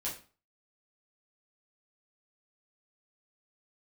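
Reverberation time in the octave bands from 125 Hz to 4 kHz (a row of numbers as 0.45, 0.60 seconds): 0.40, 0.40, 0.35, 0.40, 0.35, 0.30 seconds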